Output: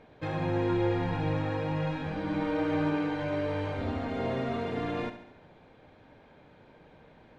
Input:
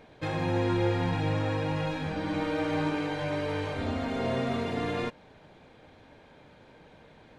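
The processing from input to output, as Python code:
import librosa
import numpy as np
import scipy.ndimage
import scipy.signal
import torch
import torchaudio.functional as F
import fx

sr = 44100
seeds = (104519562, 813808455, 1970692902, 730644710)

y = fx.lowpass(x, sr, hz=2600.0, slope=6)
y = fx.echo_feedback(y, sr, ms=71, feedback_pct=55, wet_db=-11.0)
y = y * 10.0 ** (-1.5 / 20.0)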